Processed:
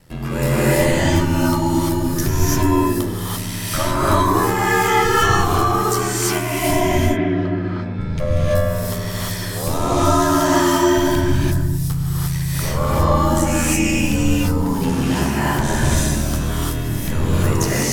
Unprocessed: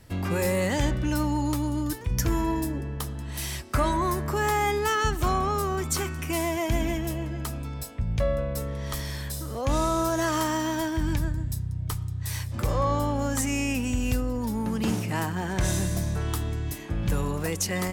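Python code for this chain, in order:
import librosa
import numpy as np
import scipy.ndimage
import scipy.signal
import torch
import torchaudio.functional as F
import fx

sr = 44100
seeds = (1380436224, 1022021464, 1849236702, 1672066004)

y = fx.cabinet(x, sr, low_hz=110.0, low_slope=12, high_hz=3200.0, hz=(160.0, 350.0, 910.0, 1600.0, 2800.0), db=(10, 4, -4, 4, -7), at=(6.8, 7.98), fade=0.02)
y = fx.dmg_crackle(y, sr, seeds[0], per_s=370.0, level_db=-44.0, at=(10.93, 11.76), fade=0.02)
y = y * np.sin(2.0 * np.pi * 41.0 * np.arange(len(y)) / sr)
y = fx.rev_gated(y, sr, seeds[1], gate_ms=370, shape='rising', drr_db=-8.0)
y = y * 10.0 ** (4.0 / 20.0)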